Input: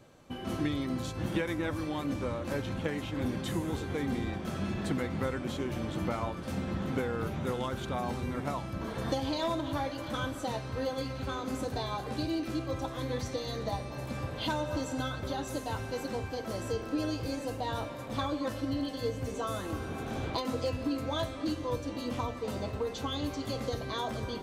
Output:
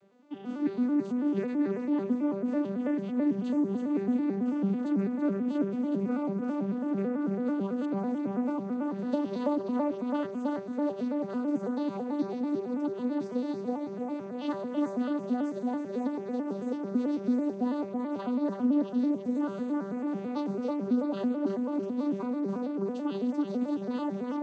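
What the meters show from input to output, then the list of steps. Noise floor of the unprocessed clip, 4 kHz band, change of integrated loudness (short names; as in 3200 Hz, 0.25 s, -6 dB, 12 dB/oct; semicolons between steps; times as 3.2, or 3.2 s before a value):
-41 dBFS, under -10 dB, +3.5 dB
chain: arpeggiated vocoder major triad, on G3, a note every 0.11 s; on a send: darkening echo 0.33 s, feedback 49%, low-pass 4900 Hz, level -3.5 dB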